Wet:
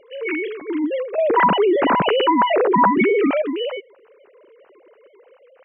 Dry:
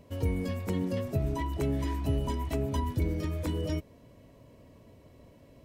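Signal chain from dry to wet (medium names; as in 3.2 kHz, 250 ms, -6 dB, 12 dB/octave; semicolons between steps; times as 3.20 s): formants replaced by sine waves; dynamic bell 1.6 kHz, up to +3 dB, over -37 dBFS, Q 0.76; 1.18–3.42 s: level flattener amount 70%; trim +6.5 dB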